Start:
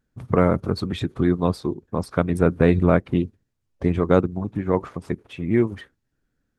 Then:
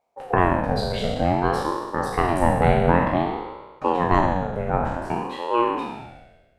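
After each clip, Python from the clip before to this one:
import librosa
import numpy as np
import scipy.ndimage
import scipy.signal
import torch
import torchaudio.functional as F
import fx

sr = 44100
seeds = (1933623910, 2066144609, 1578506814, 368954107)

y = fx.spec_trails(x, sr, decay_s=1.27)
y = fx.ring_lfo(y, sr, carrier_hz=510.0, swing_pct=40, hz=0.54)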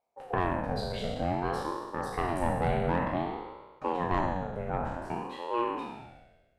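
y = 10.0 ** (-7.5 / 20.0) * np.tanh(x / 10.0 ** (-7.5 / 20.0))
y = F.gain(torch.from_numpy(y), -8.5).numpy()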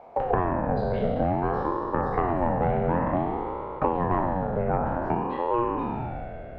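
y = scipy.signal.sosfilt(scipy.signal.butter(2, 1400.0, 'lowpass', fs=sr, output='sos'), x)
y = fx.band_squash(y, sr, depth_pct=100)
y = F.gain(torch.from_numpy(y), 5.0).numpy()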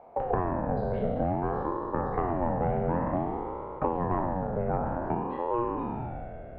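y = fx.lowpass(x, sr, hz=1500.0, slope=6)
y = F.gain(torch.from_numpy(y), -3.0).numpy()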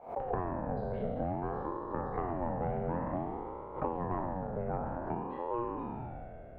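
y = fx.pre_swell(x, sr, db_per_s=130.0)
y = F.gain(torch.from_numpy(y), -6.5).numpy()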